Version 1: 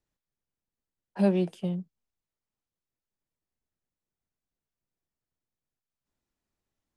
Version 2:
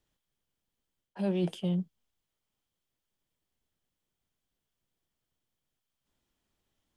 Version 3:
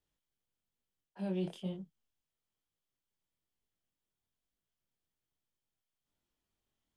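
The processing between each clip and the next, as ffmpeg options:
-af "equalizer=f=3.2k:w=5.3:g=8.5,areverse,acompressor=threshold=-31dB:ratio=16,areverse,volume=5dB"
-af "flanger=delay=19.5:depth=7.5:speed=1.1,volume=-4dB"

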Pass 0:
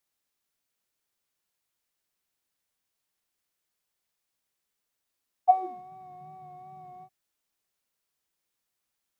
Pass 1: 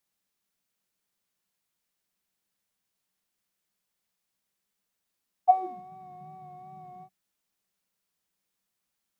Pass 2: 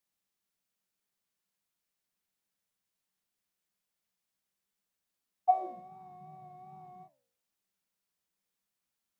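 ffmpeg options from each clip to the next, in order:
-af "equalizer=f=190:t=o:w=0.31:g=10.5"
-af "flanger=delay=9.9:depth=7.2:regen=83:speed=1.3:shape=sinusoidal"

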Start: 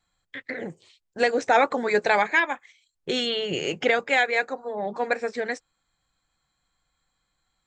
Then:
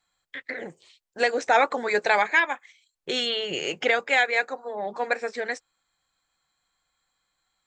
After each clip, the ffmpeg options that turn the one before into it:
-af "lowshelf=f=290:g=-11.5,volume=1dB"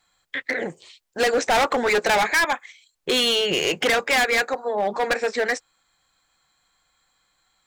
-af "asoftclip=type=hard:threshold=-25dB,volume=8.5dB"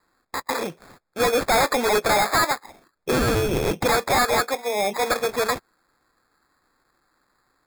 -af "acrusher=samples=15:mix=1:aa=0.000001"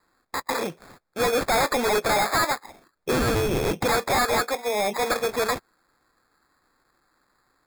-af "asoftclip=type=hard:threshold=-19.5dB"

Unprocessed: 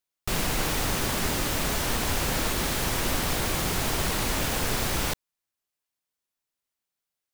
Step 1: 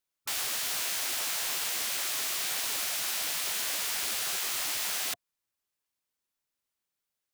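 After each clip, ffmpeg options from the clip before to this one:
-af "bandreject=f=700:w=12,afftfilt=real='re*lt(hypot(re,im),0.0501)':imag='im*lt(hypot(re,im),0.0501)':win_size=1024:overlap=0.75"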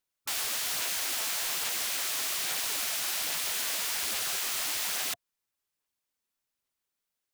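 -af "aphaser=in_gain=1:out_gain=1:delay=4.6:decay=0.23:speed=1.2:type=sinusoidal"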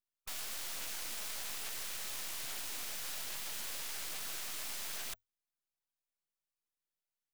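-af "afreqshift=-43,aeval=exprs='max(val(0),0)':c=same,volume=-6dB"

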